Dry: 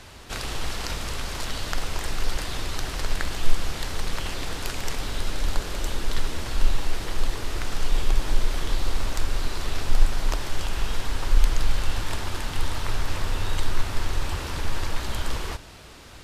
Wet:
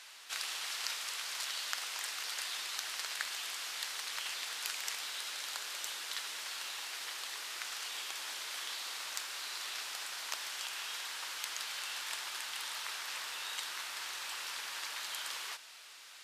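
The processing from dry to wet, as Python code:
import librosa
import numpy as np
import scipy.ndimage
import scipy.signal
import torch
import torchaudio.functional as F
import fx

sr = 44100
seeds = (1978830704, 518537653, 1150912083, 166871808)

y = scipy.signal.sosfilt(scipy.signal.bessel(2, 1800.0, 'highpass', norm='mag', fs=sr, output='sos'), x)
y = F.gain(torch.from_numpy(y), -2.5).numpy()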